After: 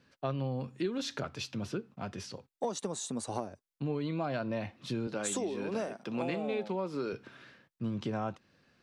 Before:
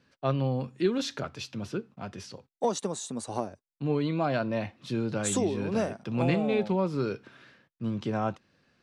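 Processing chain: 5.07–7.13 s: high-pass 240 Hz 12 dB/octave; compression 3:1, threshold -32 dBFS, peak gain reduction 9 dB

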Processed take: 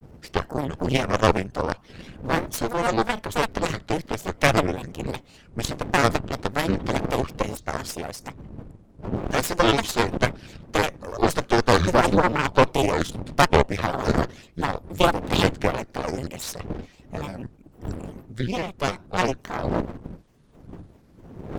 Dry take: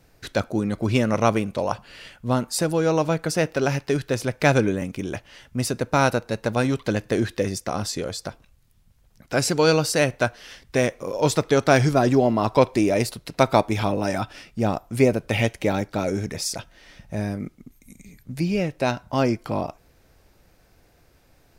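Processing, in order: wind noise 250 Hz -32 dBFS; granulator, spray 11 ms, pitch spread up and down by 7 st; Chebyshev shaper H 6 -10 dB, 7 -26 dB, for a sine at -3 dBFS; trim -1 dB

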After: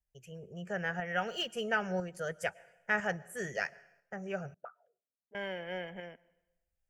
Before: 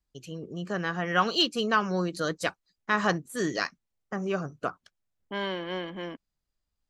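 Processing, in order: on a send at -23 dB: reverberation RT60 0.90 s, pre-delay 100 ms; on the sum: tremolo saw up 1 Hz, depth 45%; 4.54–5.35 s: auto-wah 220–1200 Hz, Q 11, up, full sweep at -31.5 dBFS; static phaser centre 1.1 kHz, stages 6; trim -1 dB

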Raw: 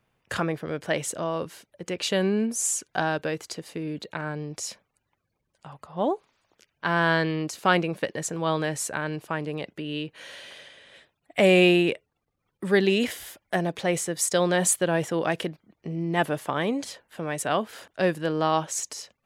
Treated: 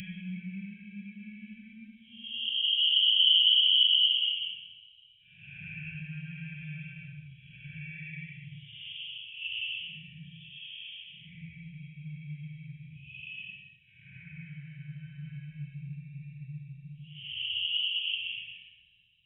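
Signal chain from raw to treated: knee-point frequency compression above 2.2 kHz 4:1; Paulstretch 7.3×, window 0.10 s, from 2.20 s; inverse Chebyshev band-stop 290–1300 Hz, stop band 50 dB; spring tank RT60 2.8 s, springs 43/53 ms, chirp 25 ms, DRR 19 dB

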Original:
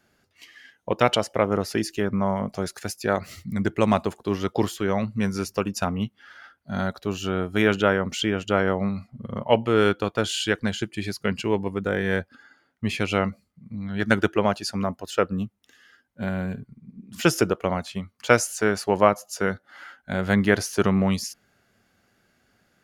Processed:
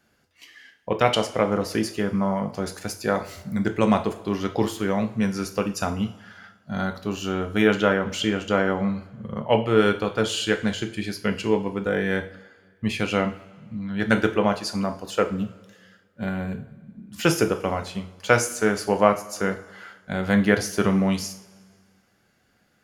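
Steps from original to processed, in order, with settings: two-slope reverb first 0.41 s, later 1.8 s, from -18 dB, DRR 5.5 dB; trim -1 dB

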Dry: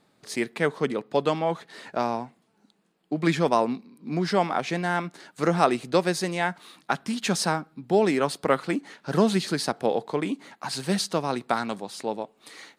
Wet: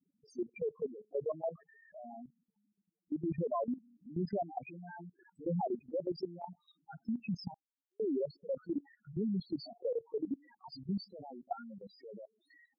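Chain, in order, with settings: loudest bins only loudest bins 2; level held to a coarse grid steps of 15 dB; 7.54–8.00 s: Butterworth band-pass 5.4 kHz, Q 1.5; trim -3 dB

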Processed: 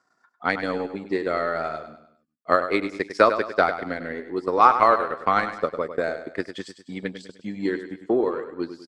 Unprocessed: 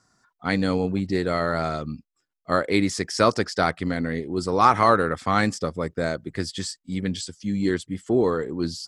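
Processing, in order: high-pass 150 Hz 12 dB/octave; tone controls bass -13 dB, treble -13 dB; transient shaper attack +7 dB, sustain -12 dB; feedback delay 101 ms, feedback 42%, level -10.5 dB; trim -1 dB

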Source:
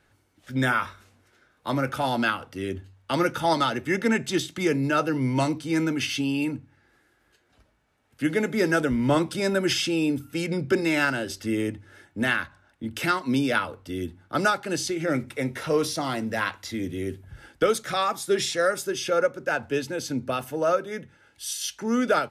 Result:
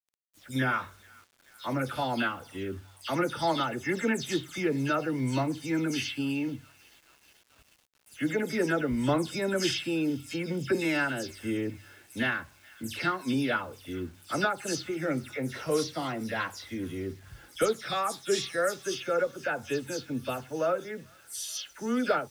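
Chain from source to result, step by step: delay that grows with frequency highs early, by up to 128 ms; feedback echo behind a high-pass 433 ms, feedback 74%, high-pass 1.4 kHz, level -23.5 dB; bit crusher 9-bit; trim -4.5 dB

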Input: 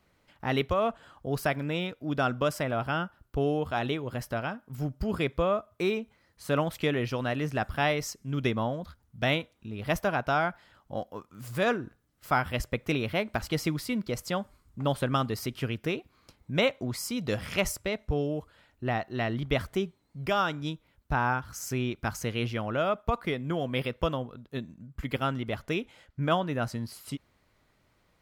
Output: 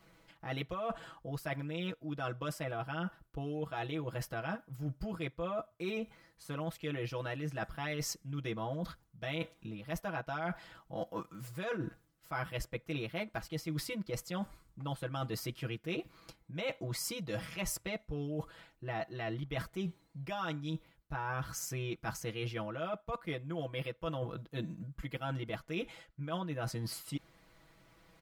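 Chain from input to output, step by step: comb 6.1 ms, depth 98%; reverse; compression 10:1, threshold -37 dBFS, peak gain reduction 21 dB; reverse; trim +2 dB

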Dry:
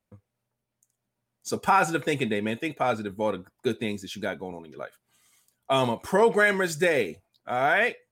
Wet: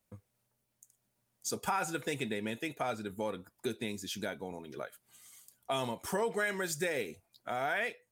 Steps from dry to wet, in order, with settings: treble shelf 4.8 kHz +9.5 dB; compression 2:1, threshold -40 dBFS, peak gain reduction 13.5 dB

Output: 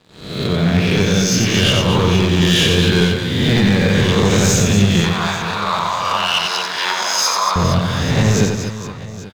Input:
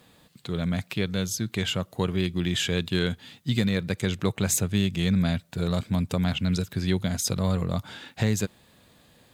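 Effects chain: reverse spectral sustain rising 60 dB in 0.99 s; steep low-pass 6.3 kHz 36 dB/octave; waveshaping leveller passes 3; 5.04–7.56 s: resonant high-pass 1 kHz, resonance Q 4.1; reverse bouncing-ball echo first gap 90 ms, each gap 1.6×, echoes 5

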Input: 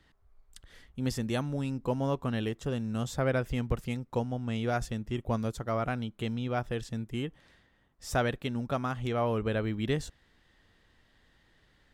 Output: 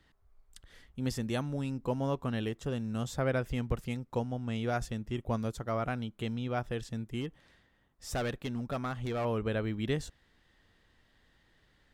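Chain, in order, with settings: 7.21–9.25 s: hard clipper -27 dBFS, distortion -17 dB; trim -2 dB

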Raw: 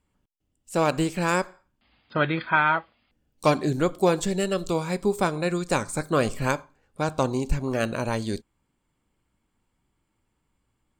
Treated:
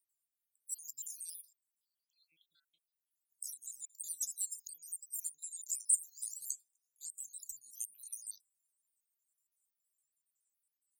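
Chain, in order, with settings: random holes in the spectrogram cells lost 71%; inverse Chebyshev high-pass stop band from 2 kHz, stop band 70 dB; trim +11 dB

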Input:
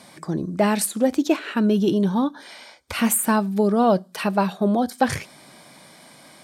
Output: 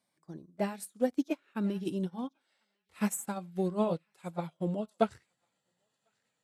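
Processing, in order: pitch bend over the whole clip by -3.5 st starting unshifted; treble shelf 7.8 kHz +4.5 dB; on a send: band-passed feedback delay 1048 ms, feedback 52%, band-pass 2.9 kHz, level -14.5 dB; on the sum: upward expansion 2.5:1, over -33 dBFS; trim -6 dB

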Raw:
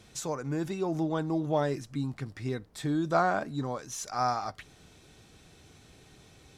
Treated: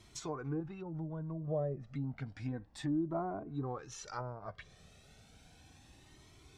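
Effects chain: low-pass that closes with the level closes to 510 Hz, closed at -26 dBFS; 0.60–1.48 s: peaking EQ 420 Hz -14.5 dB 0.82 oct; Shepard-style flanger rising 0.32 Hz

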